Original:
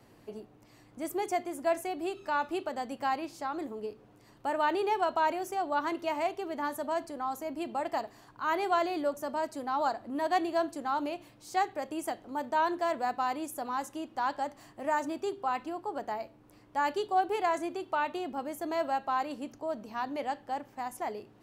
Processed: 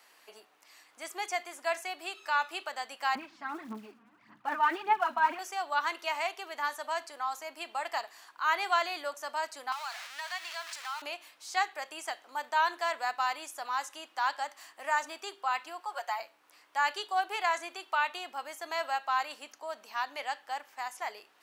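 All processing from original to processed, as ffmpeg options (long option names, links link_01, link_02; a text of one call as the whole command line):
ffmpeg -i in.wav -filter_complex "[0:a]asettb=1/sr,asplit=3[link_01][link_02][link_03];[link_01]atrim=end=3.154[link_04];[link_02]atrim=start=3.15:end=5.39,asetpts=PTS-STARTPTS,afade=type=in:duration=0.004:curve=qsin,afade=type=out:start_time=2.236:duration=0.004:curve=qsin,lowpass=1700,lowshelf=frequency=320:width_type=q:width=3:gain=13,aphaser=in_gain=1:out_gain=1:delay=4.4:decay=0.66:speed=1.7:type=sinusoidal[link_05];[link_03]atrim=start=5.386[link_06];[link_04][link_05]acrossfade=duration=0.004:curve1=hsin:curve2=qsin[link_07];[link_07][link_06]acrossfade=duration=0.004:curve1=qsin:curve2=hsin,asettb=1/sr,asplit=3[link_08][link_09][link_10];[link_08]atrim=end=9.724[link_11];[link_09]atrim=start=9.72:end=11.02,asetpts=PTS-STARTPTS,afade=type=in:duration=0.004:curve=qsin,afade=type=out:start_time=1.296:duration=0.004:curve=qsin,aeval=exprs='val(0)+0.5*0.0168*sgn(val(0))':channel_layout=same,highpass=1200,acompressor=threshold=-40dB:ratio=2:attack=3.2:release=140:knee=1:detection=peak[link_12];[link_10]atrim=start=11.016[link_13];[link_11][link_12]acrossfade=duration=0.004:curve1=hsin:curve2=qsin[link_14];[link_14][link_13]acrossfade=duration=0.004:curve1=qsin:curve2=hsin,asettb=1/sr,asplit=3[link_15][link_16][link_17];[link_15]atrim=end=15.804[link_18];[link_16]atrim=start=15.8:end=16.2,asetpts=PTS-STARTPTS,afade=type=in:duration=0.004:curve=qsin,afade=type=out:start_time=0.396:duration=0.004:curve=qsin,highpass=frequency=480:width=0.5412,highpass=frequency=480:width=1.3066,aecho=1:1:5.6:0.82,atrim=end_sample=17640[link_19];[link_17]atrim=start=16.196[link_20];[link_18][link_19]acrossfade=duration=0.004:curve1=hsin:curve2=qsin[link_21];[link_21][link_20]acrossfade=duration=0.004:curve1=qsin:curve2=hsin,highpass=1300,acrossover=split=7400[link_22][link_23];[link_23]acompressor=threshold=-60dB:ratio=4:attack=1:release=60[link_24];[link_22][link_24]amix=inputs=2:normalize=0,volume=7dB" out.wav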